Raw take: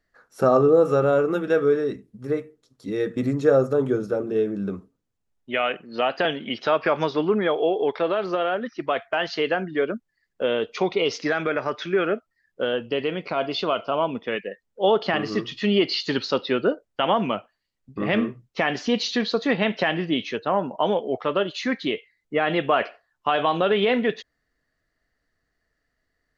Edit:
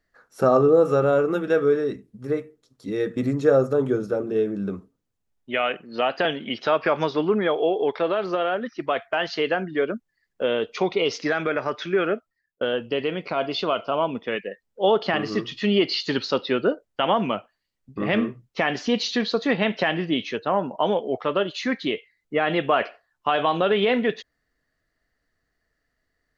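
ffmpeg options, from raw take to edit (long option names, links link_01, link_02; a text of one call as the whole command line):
ffmpeg -i in.wav -filter_complex "[0:a]asplit=2[link_01][link_02];[link_01]atrim=end=12.61,asetpts=PTS-STARTPTS,afade=type=out:start_time=12.11:duration=0.5[link_03];[link_02]atrim=start=12.61,asetpts=PTS-STARTPTS,afade=type=in:duration=0.004:curve=hsin[link_04];[link_03][link_04]concat=n=2:v=0:a=1" out.wav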